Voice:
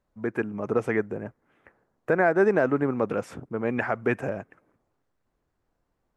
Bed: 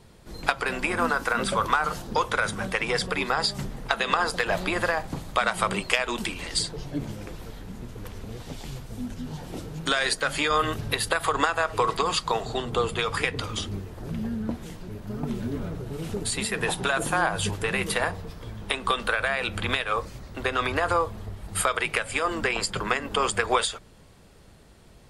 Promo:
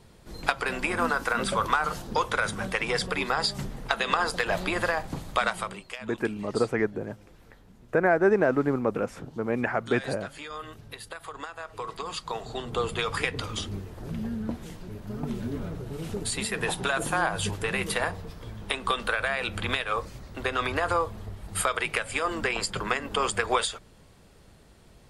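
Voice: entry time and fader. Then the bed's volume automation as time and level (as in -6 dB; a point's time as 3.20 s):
5.85 s, -0.5 dB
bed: 5.47 s -1.5 dB
5.83 s -15.5 dB
11.49 s -15.5 dB
12.93 s -2 dB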